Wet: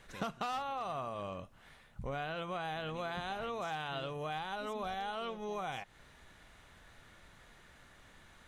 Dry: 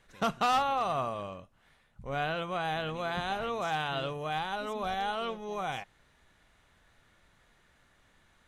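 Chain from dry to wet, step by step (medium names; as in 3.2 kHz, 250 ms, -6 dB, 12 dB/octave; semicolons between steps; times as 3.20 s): compression 6:1, threshold -43 dBFS, peak gain reduction 17.5 dB; trim +6 dB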